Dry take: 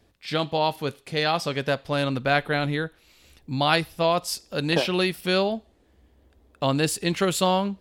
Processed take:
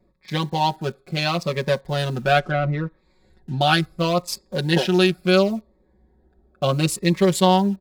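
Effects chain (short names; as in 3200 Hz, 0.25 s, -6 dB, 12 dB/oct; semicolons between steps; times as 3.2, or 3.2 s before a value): Wiener smoothing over 15 samples; in parallel at -10.5 dB: bit-crush 7-bit; on the sum: comb 5.4 ms, depth 93%; 2.39–3.61 treble ducked by the level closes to 2000 Hz, closed at -19.5 dBFS; cascading phaser falling 0.72 Hz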